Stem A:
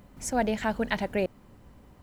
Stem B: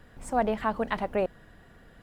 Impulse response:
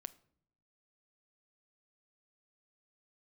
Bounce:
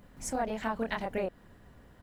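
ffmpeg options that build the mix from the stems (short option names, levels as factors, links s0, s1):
-filter_complex "[0:a]volume=0.631[s0];[1:a]adelay=27,volume=0.422,asplit=2[s1][s2];[s2]apad=whole_len=89515[s3];[s0][s3]sidechaincompress=threshold=0.0126:ratio=8:attack=11:release=158[s4];[s4][s1]amix=inputs=2:normalize=0"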